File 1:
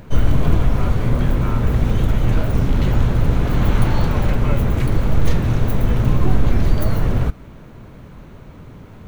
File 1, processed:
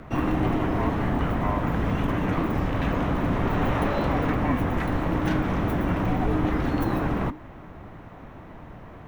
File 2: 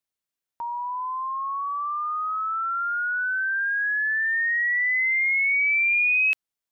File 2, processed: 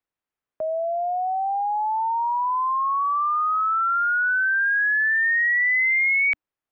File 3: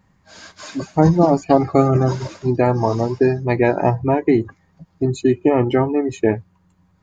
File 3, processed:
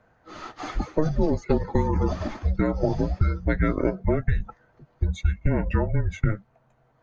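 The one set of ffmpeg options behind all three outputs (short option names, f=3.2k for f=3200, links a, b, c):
-filter_complex "[0:a]acrossover=split=260 2700:gain=0.0708 1 0.158[a][b][c];[a][b][c]amix=inputs=3:normalize=0,acrossover=split=130|3000[d][e][f];[e]acompressor=threshold=-25dB:ratio=4[g];[d][g][f]amix=inputs=3:normalize=0,afreqshift=-310,volume=5dB"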